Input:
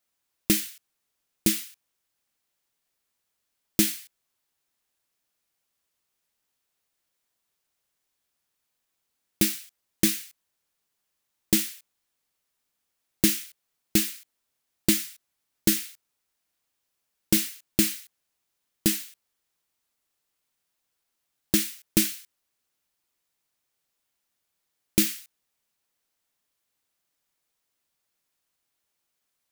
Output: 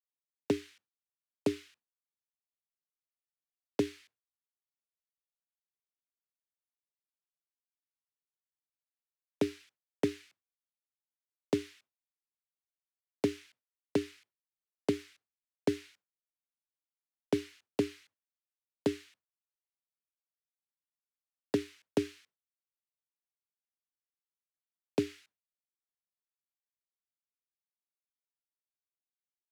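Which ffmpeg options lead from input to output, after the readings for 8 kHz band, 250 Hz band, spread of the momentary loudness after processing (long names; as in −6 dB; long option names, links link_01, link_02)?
−26.0 dB, −7.0 dB, 9 LU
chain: -filter_complex "[0:a]aemphasis=mode=reproduction:type=75fm,agate=range=-33dB:threshold=-51dB:ratio=3:detection=peak,highshelf=frequency=8100:gain=-11.5,acrossover=split=180|1100[link_01][link_02][link_03];[link_01]acompressor=threshold=-31dB:ratio=4[link_04];[link_02]acompressor=threshold=-29dB:ratio=4[link_05];[link_03]acompressor=threshold=-46dB:ratio=4[link_06];[link_04][link_05][link_06]amix=inputs=3:normalize=0,afreqshift=86"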